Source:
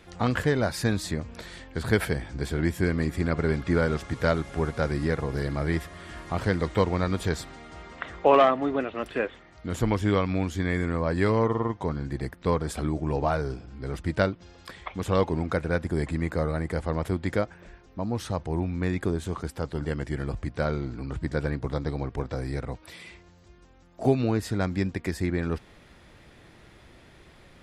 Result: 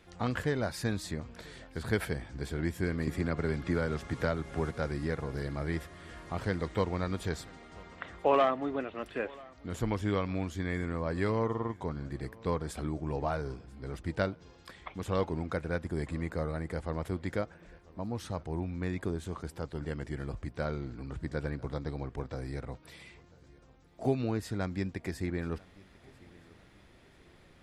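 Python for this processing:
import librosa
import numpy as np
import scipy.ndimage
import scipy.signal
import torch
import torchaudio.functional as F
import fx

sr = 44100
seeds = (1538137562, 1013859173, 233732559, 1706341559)

y = fx.echo_feedback(x, sr, ms=991, feedback_pct=43, wet_db=-24.0)
y = fx.band_squash(y, sr, depth_pct=70, at=(3.07, 4.71))
y = y * 10.0 ** (-7.0 / 20.0)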